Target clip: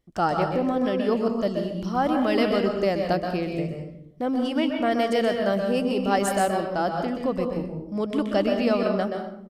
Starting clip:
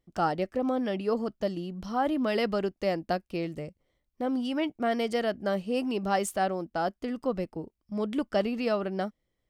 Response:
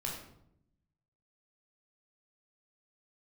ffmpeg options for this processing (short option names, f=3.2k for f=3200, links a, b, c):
-filter_complex "[0:a]asplit=2[a][b];[1:a]atrim=start_sample=2205,adelay=126[c];[b][c]afir=irnorm=-1:irlink=0,volume=-4.5dB[d];[a][d]amix=inputs=2:normalize=0,aresample=32000,aresample=44100,volume=3.5dB"